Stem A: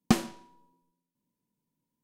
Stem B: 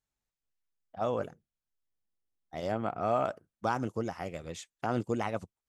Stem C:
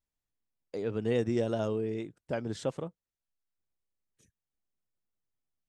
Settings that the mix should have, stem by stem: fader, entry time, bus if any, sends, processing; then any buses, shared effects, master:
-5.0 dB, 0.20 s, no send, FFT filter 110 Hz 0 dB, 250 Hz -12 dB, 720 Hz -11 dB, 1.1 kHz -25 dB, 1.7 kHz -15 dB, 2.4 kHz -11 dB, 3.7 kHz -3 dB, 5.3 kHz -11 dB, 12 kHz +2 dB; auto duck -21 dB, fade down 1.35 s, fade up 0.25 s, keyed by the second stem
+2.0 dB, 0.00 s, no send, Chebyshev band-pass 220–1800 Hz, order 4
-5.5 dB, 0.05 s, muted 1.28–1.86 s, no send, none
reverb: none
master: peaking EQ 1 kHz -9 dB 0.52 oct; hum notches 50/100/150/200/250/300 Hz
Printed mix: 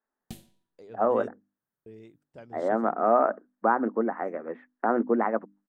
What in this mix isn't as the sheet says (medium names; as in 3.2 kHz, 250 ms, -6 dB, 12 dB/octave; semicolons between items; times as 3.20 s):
stem B +2.0 dB -> +8.5 dB; stem C -5.5 dB -> -13.0 dB; master: missing peaking EQ 1 kHz -9 dB 0.52 oct